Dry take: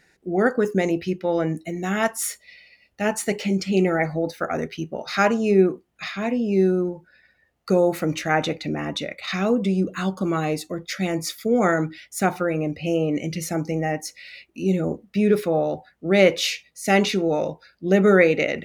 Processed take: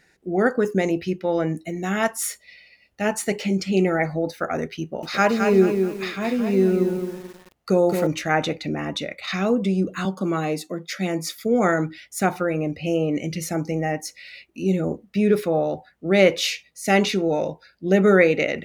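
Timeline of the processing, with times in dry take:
4.81–8.07 s: bit-crushed delay 217 ms, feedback 35%, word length 7-bit, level -5.5 dB
10.05–11.36 s: elliptic high-pass 160 Hz
17.31–17.98 s: band-stop 1.2 kHz, Q 8.9

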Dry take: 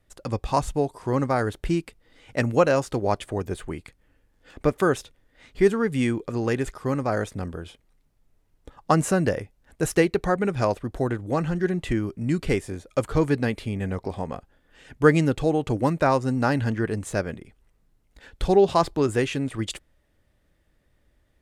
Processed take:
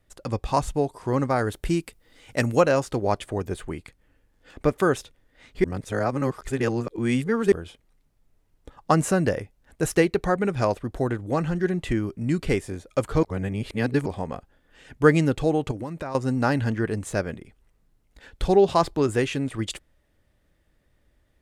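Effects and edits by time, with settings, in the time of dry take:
1.48–2.60 s: treble shelf 8.3 kHz -> 5.2 kHz +10 dB
5.64–7.52 s: reverse
13.23–14.06 s: reverse
15.71–16.15 s: compression, threshold -29 dBFS

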